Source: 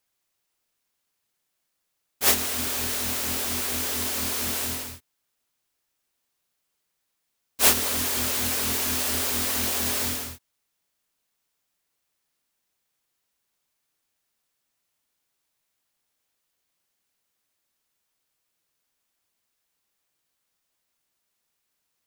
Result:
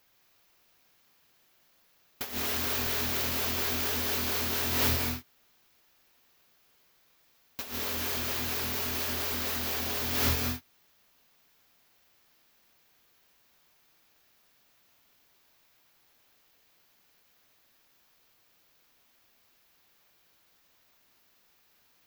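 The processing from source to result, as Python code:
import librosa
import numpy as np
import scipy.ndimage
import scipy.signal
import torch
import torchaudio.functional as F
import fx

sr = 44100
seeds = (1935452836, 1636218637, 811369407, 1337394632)

y = fx.peak_eq(x, sr, hz=8900.0, db=-13.0, octaves=0.7)
y = fx.over_compress(y, sr, threshold_db=-37.0, ratio=-1.0)
y = fx.rev_gated(y, sr, seeds[0], gate_ms=240, shape='rising', drr_db=3.5)
y = y * librosa.db_to_amplitude(4.0)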